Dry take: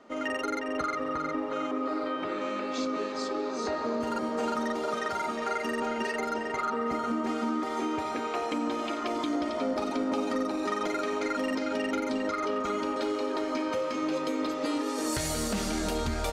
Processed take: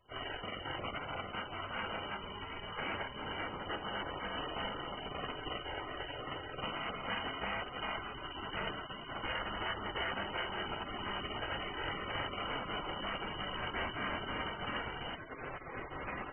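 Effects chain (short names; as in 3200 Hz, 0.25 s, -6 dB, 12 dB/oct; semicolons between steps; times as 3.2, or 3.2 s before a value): spectral gate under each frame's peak -30 dB weak; limiter -41 dBFS, peak gain reduction 8 dB; inverted band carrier 3000 Hz; gain +17 dB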